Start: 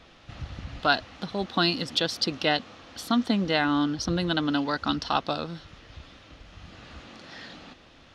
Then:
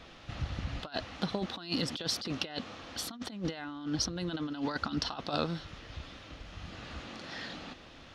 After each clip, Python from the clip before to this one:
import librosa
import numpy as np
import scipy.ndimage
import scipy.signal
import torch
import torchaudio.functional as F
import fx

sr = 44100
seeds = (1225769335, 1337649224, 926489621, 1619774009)

y = fx.over_compress(x, sr, threshold_db=-30.0, ratio=-0.5)
y = y * 10.0 ** (-3.5 / 20.0)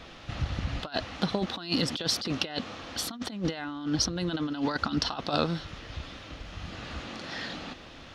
y = fx.end_taper(x, sr, db_per_s=540.0)
y = y * 10.0 ** (5.0 / 20.0)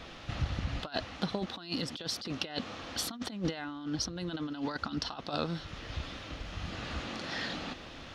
y = fx.rider(x, sr, range_db=5, speed_s=0.5)
y = y * 10.0 ** (-4.5 / 20.0)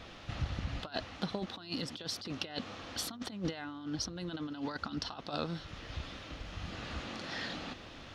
y = fx.dmg_buzz(x, sr, base_hz=100.0, harmonics=15, level_db=-60.0, tilt_db=-5, odd_only=False)
y = y * 10.0 ** (-3.0 / 20.0)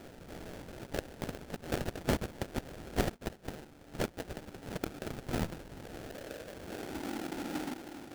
y = fx.filter_sweep_bandpass(x, sr, from_hz=4900.0, to_hz=320.0, start_s=3.72, end_s=7.04, q=3.2)
y = fx.sample_hold(y, sr, seeds[0], rate_hz=1100.0, jitter_pct=20)
y = y * 10.0 ** (12.5 / 20.0)